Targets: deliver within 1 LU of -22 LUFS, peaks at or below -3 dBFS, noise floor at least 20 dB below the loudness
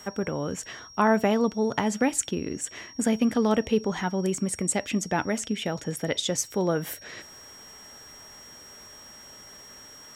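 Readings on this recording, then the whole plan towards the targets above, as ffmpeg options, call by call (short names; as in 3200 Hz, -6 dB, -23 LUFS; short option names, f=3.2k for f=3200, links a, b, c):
steady tone 5600 Hz; tone level -46 dBFS; loudness -27.0 LUFS; peak -9.5 dBFS; loudness target -22.0 LUFS
-> -af "bandreject=f=5.6k:w=30"
-af "volume=5dB"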